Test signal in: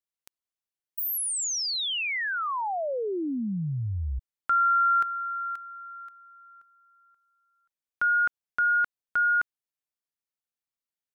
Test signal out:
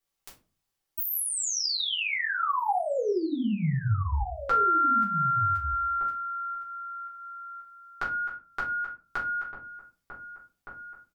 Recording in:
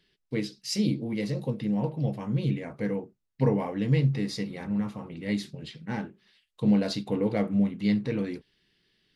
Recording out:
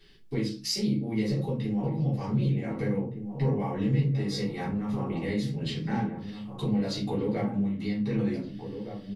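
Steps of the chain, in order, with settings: compression 4:1, threshold -41 dBFS; echo from a far wall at 260 m, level -8 dB; simulated room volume 140 m³, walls furnished, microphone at 3.5 m; trim +3.5 dB

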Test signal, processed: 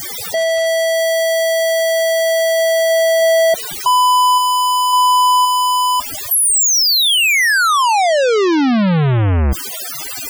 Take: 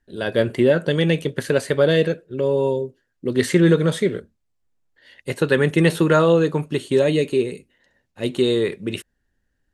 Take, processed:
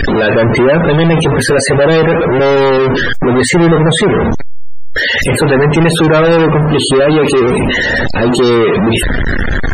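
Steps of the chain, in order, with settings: jump at every zero crossing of -18.5 dBFS; power-law waveshaper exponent 0.35; loudest bins only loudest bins 64

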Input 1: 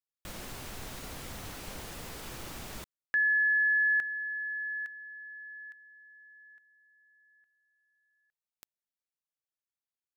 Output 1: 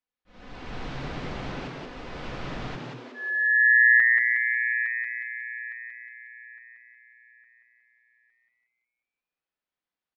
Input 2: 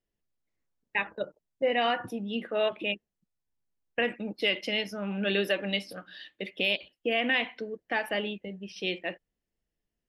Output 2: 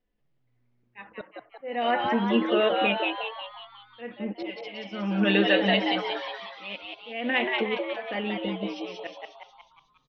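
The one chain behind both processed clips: Gaussian low-pass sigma 2.2 samples; comb 4 ms, depth 54%; slow attack 546 ms; frequency-shifting echo 181 ms, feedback 53%, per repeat +120 Hz, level -3 dB; trim +6 dB

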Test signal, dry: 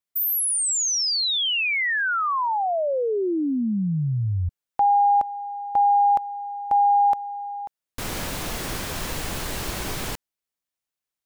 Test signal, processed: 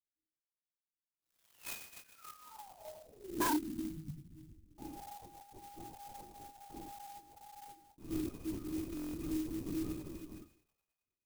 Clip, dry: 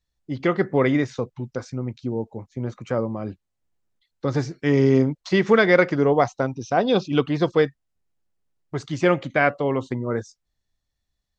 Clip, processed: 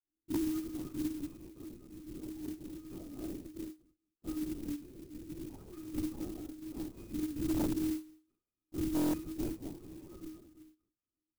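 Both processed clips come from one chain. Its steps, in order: chunks repeated in reverse 179 ms, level -9 dB; dynamic bell 1.5 kHz, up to +7 dB, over -40 dBFS, Q 2.5; compression 8:1, threshold -28 dBFS; vowel filter u; pitch-class resonator D#, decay 0.5 s; thinning echo 105 ms, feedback 76%, high-pass 710 Hz, level -14.5 dB; Schroeder reverb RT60 0.3 s, combs from 28 ms, DRR -6.5 dB; LPC vocoder at 8 kHz whisper; wavefolder -38.5 dBFS; buffer glitch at 8.95 s, samples 1024, times 7; sampling jitter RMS 0.083 ms; trim +12.5 dB

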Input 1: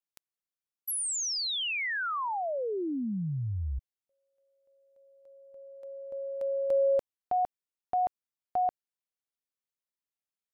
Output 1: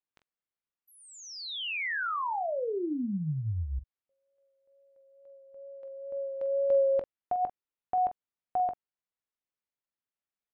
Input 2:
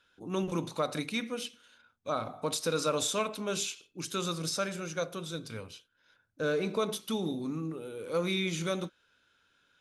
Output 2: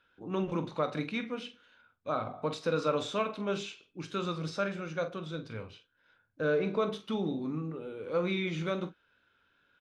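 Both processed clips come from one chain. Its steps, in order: low-pass 2.8 kHz 12 dB/octave; wow and flutter 2.1 Hz 18 cents; early reflections 20 ms -13.5 dB, 45 ms -12 dB

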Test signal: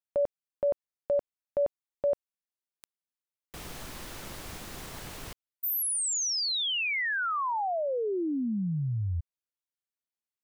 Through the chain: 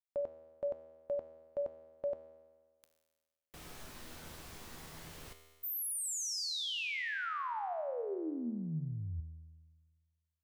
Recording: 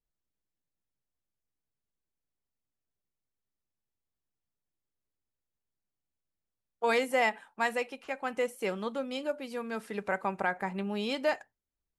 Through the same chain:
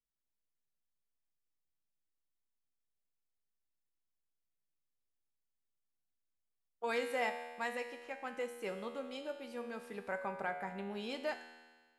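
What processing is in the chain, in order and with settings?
feedback comb 80 Hz, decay 1.5 s, harmonics all, mix 80%; trim +3 dB

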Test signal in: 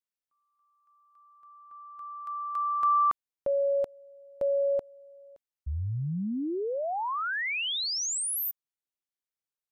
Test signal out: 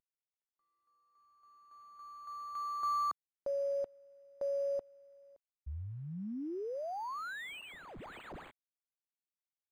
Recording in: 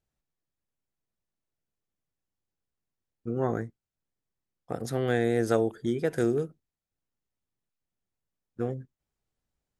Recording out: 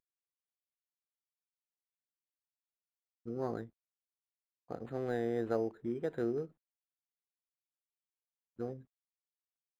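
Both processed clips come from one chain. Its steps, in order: CVSD coder 64 kbps; graphic EQ 125/4000/8000 Hz -5/-10/-10 dB; decimation joined by straight lines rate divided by 8×; trim -7.5 dB

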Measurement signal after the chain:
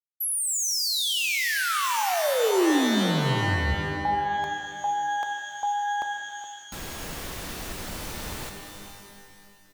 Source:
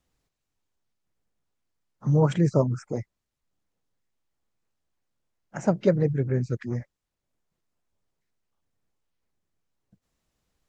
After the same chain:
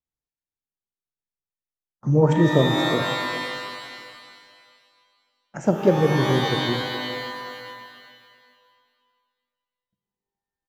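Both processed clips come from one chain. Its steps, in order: gate with hold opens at -42 dBFS; dynamic bell 340 Hz, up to +6 dB, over -39 dBFS, Q 1.2; on a send: delay 420 ms -14.5 dB; on the sum: pitch-shifted reverb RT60 2 s, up +12 st, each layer -2 dB, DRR 6 dB

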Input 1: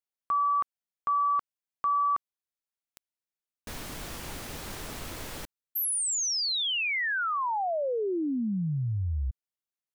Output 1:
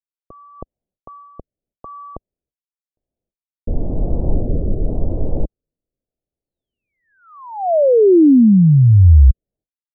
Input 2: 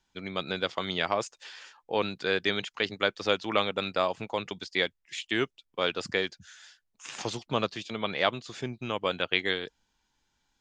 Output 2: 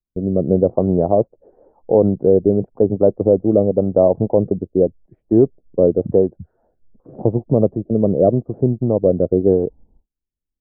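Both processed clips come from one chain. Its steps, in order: gate with hold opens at -43 dBFS, closes at -49 dBFS, hold 285 ms, range -33 dB; steep low-pass 660 Hz 36 dB/octave; bass shelf 72 Hz +11.5 dB; rotary cabinet horn 0.9 Hz; loudness maximiser +22 dB; trim -2 dB

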